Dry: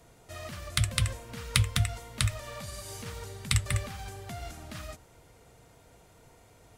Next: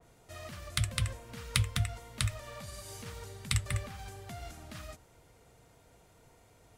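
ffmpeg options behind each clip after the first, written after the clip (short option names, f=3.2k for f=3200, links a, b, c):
-af "adynamicequalizer=threshold=0.00562:dfrequency=2700:dqfactor=0.7:tfrequency=2700:tqfactor=0.7:attack=5:release=100:ratio=0.375:range=2.5:mode=cutabove:tftype=highshelf,volume=-4dB"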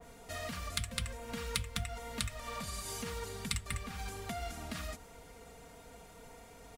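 -af "aecho=1:1:4.3:0.64,acompressor=threshold=-44dB:ratio=2.5,acrusher=bits=9:mode=log:mix=0:aa=0.000001,volume=6dB"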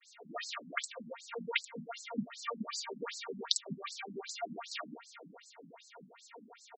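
-af "aecho=1:1:364:0.119,agate=range=-33dB:threshold=-51dB:ratio=3:detection=peak,afftfilt=real='re*between(b*sr/1024,200*pow(5900/200,0.5+0.5*sin(2*PI*2.6*pts/sr))/1.41,200*pow(5900/200,0.5+0.5*sin(2*PI*2.6*pts/sr))*1.41)':imag='im*between(b*sr/1024,200*pow(5900/200,0.5+0.5*sin(2*PI*2.6*pts/sr))/1.41,200*pow(5900/200,0.5+0.5*sin(2*PI*2.6*pts/sr))*1.41)':win_size=1024:overlap=0.75,volume=9.5dB"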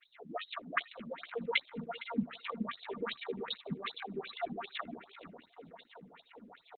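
-filter_complex "[0:a]asplit=2[a][b];[b]adelay=460,lowpass=f=3.8k:p=1,volume=-15dB,asplit=2[c][d];[d]adelay=460,lowpass=f=3.8k:p=1,volume=0.22[e];[a][c][e]amix=inputs=3:normalize=0,volume=3.5dB" -ar 48000 -c:a libopus -b:a 8k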